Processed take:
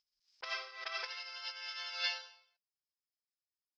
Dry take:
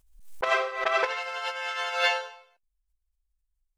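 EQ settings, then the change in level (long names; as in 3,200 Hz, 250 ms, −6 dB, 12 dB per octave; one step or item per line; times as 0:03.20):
resonant band-pass 5,100 Hz, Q 12
high-frequency loss of the air 220 metres
+17.0 dB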